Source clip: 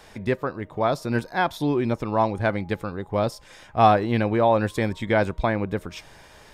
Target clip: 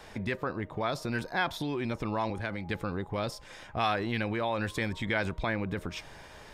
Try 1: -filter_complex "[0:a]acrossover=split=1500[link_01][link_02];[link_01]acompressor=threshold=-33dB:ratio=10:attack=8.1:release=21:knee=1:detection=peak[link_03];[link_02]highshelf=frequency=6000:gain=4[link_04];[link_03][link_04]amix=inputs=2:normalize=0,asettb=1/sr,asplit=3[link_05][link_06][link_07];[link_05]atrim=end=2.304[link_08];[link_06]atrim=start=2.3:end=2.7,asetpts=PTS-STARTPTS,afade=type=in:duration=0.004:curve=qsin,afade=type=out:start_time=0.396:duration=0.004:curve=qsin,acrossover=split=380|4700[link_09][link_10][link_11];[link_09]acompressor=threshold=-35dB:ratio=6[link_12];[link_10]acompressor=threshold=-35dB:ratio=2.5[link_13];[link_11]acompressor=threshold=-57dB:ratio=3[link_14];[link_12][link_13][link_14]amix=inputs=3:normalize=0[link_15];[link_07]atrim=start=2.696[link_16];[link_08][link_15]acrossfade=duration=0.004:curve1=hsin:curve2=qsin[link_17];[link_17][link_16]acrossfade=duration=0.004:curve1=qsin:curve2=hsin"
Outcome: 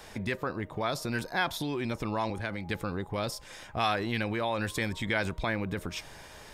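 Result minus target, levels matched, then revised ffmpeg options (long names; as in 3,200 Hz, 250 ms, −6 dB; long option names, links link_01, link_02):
8,000 Hz band +5.5 dB
-filter_complex "[0:a]acrossover=split=1500[link_01][link_02];[link_01]acompressor=threshold=-33dB:ratio=10:attack=8.1:release=21:knee=1:detection=peak[link_03];[link_02]highshelf=frequency=6000:gain=-5.5[link_04];[link_03][link_04]amix=inputs=2:normalize=0,asettb=1/sr,asplit=3[link_05][link_06][link_07];[link_05]atrim=end=2.304[link_08];[link_06]atrim=start=2.3:end=2.7,asetpts=PTS-STARTPTS,afade=type=in:duration=0.004:curve=qsin,afade=type=out:start_time=0.396:duration=0.004:curve=qsin,acrossover=split=380|4700[link_09][link_10][link_11];[link_09]acompressor=threshold=-35dB:ratio=6[link_12];[link_10]acompressor=threshold=-35dB:ratio=2.5[link_13];[link_11]acompressor=threshold=-57dB:ratio=3[link_14];[link_12][link_13][link_14]amix=inputs=3:normalize=0[link_15];[link_07]atrim=start=2.696[link_16];[link_08][link_15]acrossfade=duration=0.004:curve1=hsin:curve2=qsin[link_17];[link_17][link_16]acrossfade=duration=0.004:curve1=qsin:curve2=hsin"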